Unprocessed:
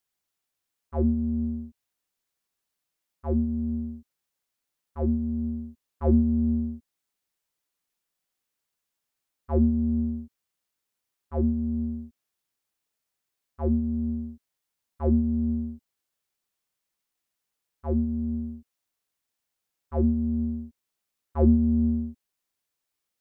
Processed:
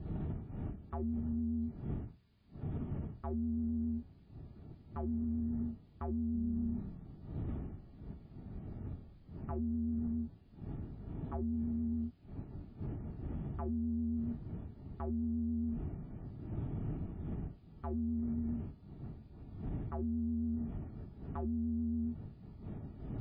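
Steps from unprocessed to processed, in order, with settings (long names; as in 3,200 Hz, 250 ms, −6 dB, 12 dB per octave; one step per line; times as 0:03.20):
wind on the microphone 140 Hz −42 dBFS
downward compressor 16 to 1, threshold −32 dBFS, peak gain reduction 18.5 dB
brickwall limiter −34.5 dBFS, peak gain reduction 10.5 dB
mains-hum notches 60/120/180 Hz
notch comb filter 520 Hz
bad sample-rate conversion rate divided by 2×, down none, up zero stuff
0:06.20–0:09.58: echo with shifted repeats 143 ms, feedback 37%, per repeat −32 Hz, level −11.5 dB
pitch vibrato 7.3 Hz 30 cents
level +5.5 dB
MP3 16 kbit/s 11,025 Hz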